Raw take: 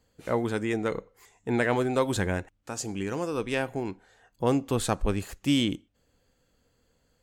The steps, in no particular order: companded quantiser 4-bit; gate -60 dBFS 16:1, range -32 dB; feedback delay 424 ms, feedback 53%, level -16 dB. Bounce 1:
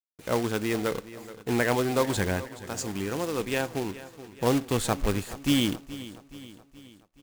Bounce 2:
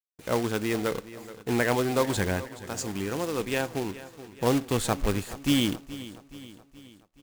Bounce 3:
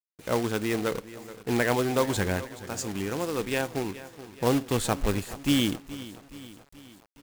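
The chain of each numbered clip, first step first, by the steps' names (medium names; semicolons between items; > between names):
gate > companded quantiser > feedback delay; companded quantiser > gate > feedback delay; gate > feedback delay > companded quantiser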